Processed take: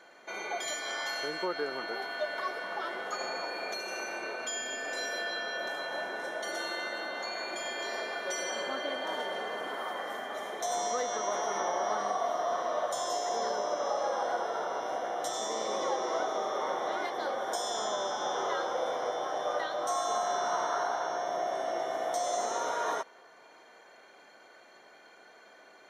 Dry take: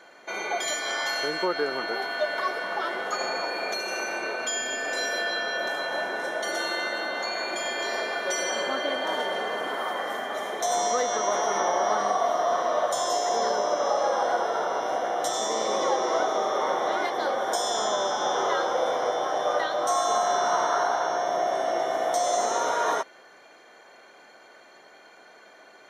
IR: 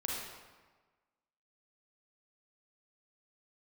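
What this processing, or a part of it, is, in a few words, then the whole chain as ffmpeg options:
ducked reverb: -filter_complex "[0:a]asplit=3[s0][s1][s2];[1:a]atrim=start_sample=2205[s3];[s1][s3]afir=irnorm=-1:irlink=0[s4];[s2]apad=whole_len=1142135[s5];[s4][s5]sidechaincompress=threshold=0.00447:ratio=8:attack=16:release=367,volume=0.398[s6];[s0][s6]amix=inputs=2:normalize=0,volume=0.447"

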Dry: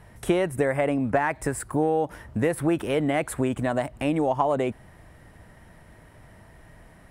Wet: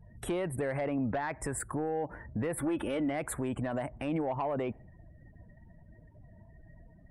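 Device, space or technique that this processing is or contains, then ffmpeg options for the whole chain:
soft clipper into limiter: -filter_complex "[0:a]asettb=1/sr,asplit=3[s0][s1][s2];[s0]atrim=end=2.574[s3];[s1]atrim=start=2.57:end=3.09,asetpts=PTS-STARTPTS,afade=t=in:d=0.004:c=qsin,afade=t=out:st=0.516:d=0.004:c=qsin,aecho=1:1:3.5:0.56,atrim=end_sample=22932[s4];[s2]atrim=start=3.086[s5];[s3][s4]acrossfade=d=0.004:c1=hsin:c2=qsin[s6];[s6][s5]acrossfade=d=0.004:c1=qsin:c2=hsin,afftdn=nr=30:nf=-46,asoftclip=type=tanh:threshold=0.178,alimiter=limit=0.0708:level=0:latency=1:release=37,volume=0.75"

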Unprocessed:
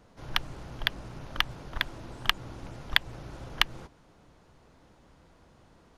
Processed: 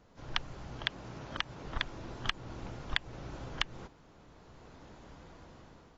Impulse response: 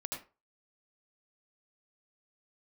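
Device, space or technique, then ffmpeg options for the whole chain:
low-bitrate web radio: -filter_complex "[0:a]asettb=1/sr,asplit=3[s0][s1][s2];[s0]atrim=end=0.794[s3];[s1]atrim=start=0.79:end=1.64,asetpts=PTS-STARTPTS,afade=t=in:d=0.004:c=qsin,afade=t=out:st=0.846:d=0.004:c=qsin,highpass=f=91:p=1[s4];[s2]atrim=start=1.636[s5];[s3][s4]acrossfade=d=0.004:c1=hsin:c2=qsin[s6];[s6][s5]acrossfade=d=0.004:c1=qsin:c2=hsin,dynaudnorm=f=310:g=5:m=2.82,alimiter=limit=0.398:level=0:latency=1:release=261,volume=0.631" -ar 22050 -c:a aac -b:a 24k

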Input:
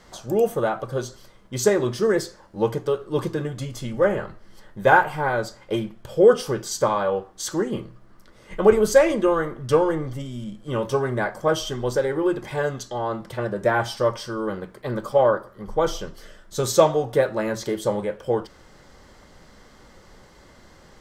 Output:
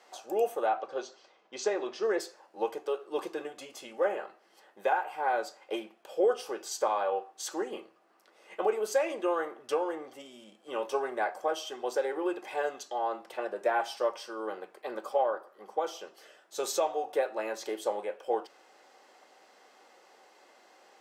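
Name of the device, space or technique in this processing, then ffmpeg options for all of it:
laptop speaker: -filter_complex "[0:a]highpass=f=340:w=0.5412,highpass=f=340:w=1.3066,equalizer=f=760:t=o:w=0.27:g=10,equalizer=f=2600:t=o:w=0.21:g=9,alimiter=limit=0.335:level=0:latency=1:release=433,asettb=1/sr,asplit=3[s0][s1][s2];[s0]atrim=end=0.664[s3];[s1]atrim=start=0.66:end=2.2,asetpts=PTS-STARTPTS,afade=t=in:d=0.004:c=qsin,afade=t=out:st=1.536:d=0.004:c=qsin,lowpass=f=6100:w=0.5412,lowpass=f=6100:w=1.3066[s4];[s2]atrim=start=2.196[s5];[s3][s4]acrossfade=d=0.004:c1=hsin:c2=qsin[s6];[s6][s5]acrossfade=d=0.004:c1=qsin:c2=hsin,volume=0.398"

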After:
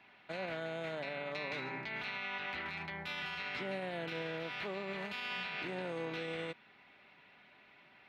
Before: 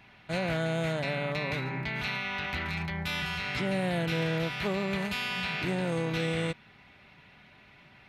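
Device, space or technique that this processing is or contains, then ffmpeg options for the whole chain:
DJ mixer with the lows and highs turned down: -filter_complex "[0:a]acrossover=split=230 4800:gain=0.158 1 0.224[s0][s1][s2];[s0][s1][s2]amix=inputs=3:normalize=0,alimiter=level_in=1.33:limit=0.0631:level=0:latency=1:release=59,volume=0.75,asettb=1/sr,asplit=3[s3][s4][s5];[s3]atrim=end=1.254[s6];[s4]atrim=start=1.25:end=1.89,asetpts=PTS-STARTPTS,afade=t=in:d=0.004:c=qsin,afade=t=out:st=0.636:d=0.004:c=qsin,equalizer=f=6300:t=o:w=1.2:g=6[s7];[s5]atrim=start=1.886[s8];[s6][s7]acrossfade=d=0.004:c1=hsin:c2=qsin[s9];[s9][s8]acrossfade=d=0.004:c1=qsin:c2=hsin,volume=0.596"

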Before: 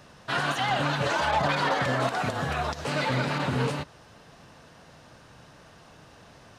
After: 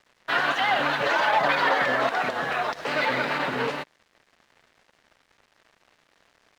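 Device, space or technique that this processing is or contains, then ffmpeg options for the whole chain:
pocket radio on a weak battery: -af "highpass=320,lowpass=4300,aeval=exprs='sgn(val(0))*max(abs(val(0))-0.00299,0)':c=same,equalizer=f=1900:t=o:w=0.55:g=4.5,volume=1.5"

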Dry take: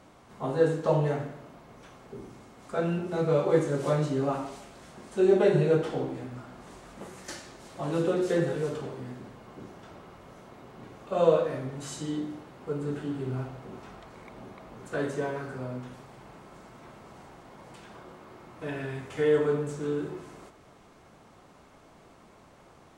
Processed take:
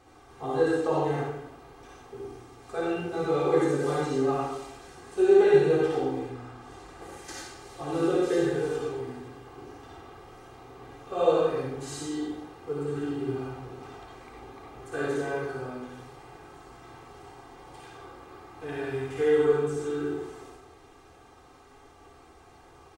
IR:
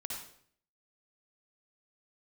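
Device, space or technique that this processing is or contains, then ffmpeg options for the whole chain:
microphone above a desk: -filter_complex "[0:a]asettb=1/sr,asplit=3[s0][s1][s2];[s0]atrim=end=6.224[s3];[s1]atrim=start=6.22:end=7.02,asetpts=PTS-STARTPTS,afade=t=in:d=0.004:c=qsin,afade=t=out:st=0.796:d=0.004:c=qsin,highshelf=f=7700:g=-6[s4];[s2]atrim=start=7.016[s5];[s3][s4]acrossfade=d=0.004:c1=hsin:c2=qsin[s6];[s6][s5]acrossfade=d=0.004:c1=qsin:c2=hsin,aecho=1:1:2.5:0.82[s7];[1:a]atrim=start_sample=2205[s8];[s7][s8]afir=irnorm=-1:irlink=0"

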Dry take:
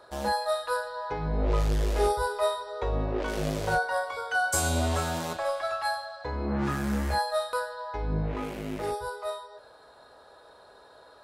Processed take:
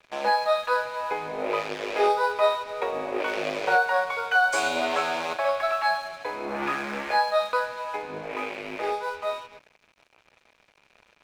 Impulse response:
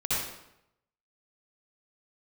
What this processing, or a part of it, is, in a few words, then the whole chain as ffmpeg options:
pocket radio on a weak battery: -af "highpass=100,highpass=360,lowpass=3900,lowshelf=f=190:g=-8.5,aeval=exprs='sgn(val(0))*max(abs(val(0))-0.00299,0)':c=same,equalizer=f=2400:t=o:w=0.24:g=11,volume=2.11"

